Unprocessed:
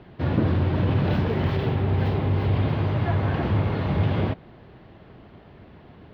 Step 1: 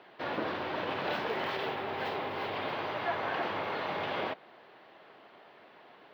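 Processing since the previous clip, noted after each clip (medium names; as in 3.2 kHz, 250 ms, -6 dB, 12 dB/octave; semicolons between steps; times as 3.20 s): high-pass 620 Hz 12 dB/octave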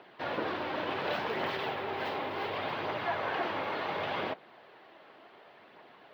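phaser 0.69 Hz, delay 3.8 ms, feedback 25%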